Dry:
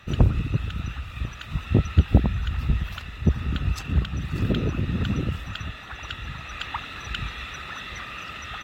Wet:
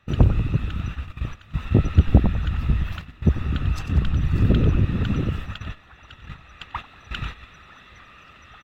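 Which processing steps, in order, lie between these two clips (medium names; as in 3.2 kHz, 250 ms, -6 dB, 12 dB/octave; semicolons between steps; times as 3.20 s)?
treble shelf 2.5 kHz -6.5 dB; on a send: frequency-shifting echo 94 ms, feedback 49%, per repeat -75 Hz, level -10 dB; on the sum: gate -32 dBFS, range -12 dB; 4.04–4.85 s: bass shelf 130 Hz +8 dB; short-mantissa float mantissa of 8-bit; trim +2 dB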